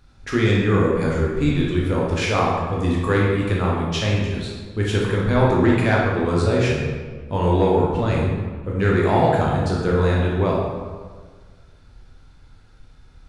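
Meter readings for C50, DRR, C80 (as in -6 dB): 0.0 dB, -4.0 dB, 2.5 dB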